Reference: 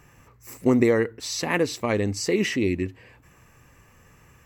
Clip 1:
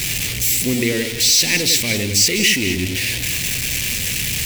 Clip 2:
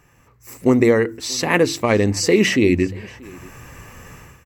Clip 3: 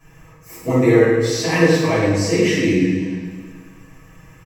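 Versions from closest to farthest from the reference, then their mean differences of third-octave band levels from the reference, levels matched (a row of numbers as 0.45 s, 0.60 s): 2, 3, 1; 4.0 dB, 7.5 dB, 16.5 dB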